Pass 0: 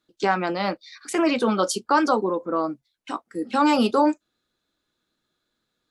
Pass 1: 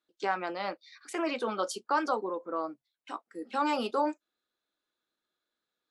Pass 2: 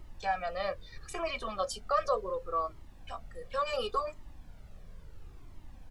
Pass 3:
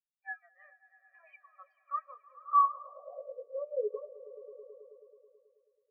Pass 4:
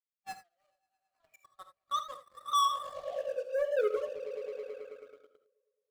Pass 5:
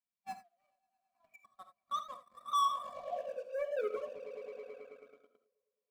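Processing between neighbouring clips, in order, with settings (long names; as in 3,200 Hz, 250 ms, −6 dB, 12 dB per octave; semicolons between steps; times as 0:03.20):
bass and treble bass −14 dB, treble −4 dB; level −8 dB
comb filter 1.7 ms, depth 99%; background noise brown −45 dBFS; flanger whose copies keep moving one way falling 0.72 Hz
echo that builds up and dies away 108 ms, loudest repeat 5, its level −10 dB; band-pass filter sweep 1,800 Hz → 430 Hz, 0:02.31–0:03.48; every bin expanded away from the loudest bin 2.5 to 1; level +8.5 dB
running median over 25 samples; leveller curve on the samples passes 3; reverb whose tail is shaped and stops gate 100 ms rising, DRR 9.5 dB; level −2.5 dB
hollow resonant body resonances 220/710/1,000/2,300 Hz, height 16 dB, ringing for 55 ms; level −7.5 dB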